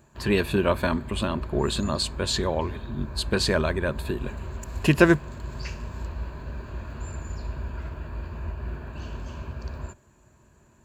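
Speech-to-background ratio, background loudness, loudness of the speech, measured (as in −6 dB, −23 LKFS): 11.0 dB, −36.5 LKFS, −25.5 LKFS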